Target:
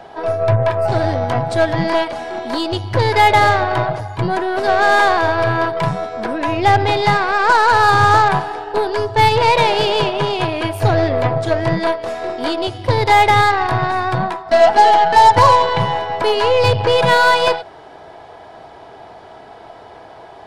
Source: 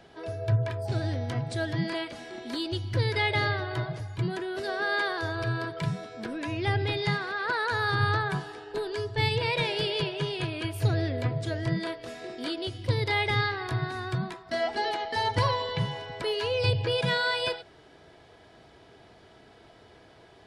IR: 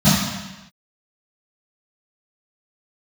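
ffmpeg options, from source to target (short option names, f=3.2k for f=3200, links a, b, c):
-af "equalizer=f=830:t=o:w=1.4:g=14.5,apsyclip=9.5dB,aeval=exprs='1.06*(cos(1*acos(clip(val(0)/1.06,-1,1)))-cos(1*PI/2))+0.0596*(cos(8*acos(clip(val(0)/1.06,-1,1)))-cos(8*PI/2))':c=same,volume=-2dB"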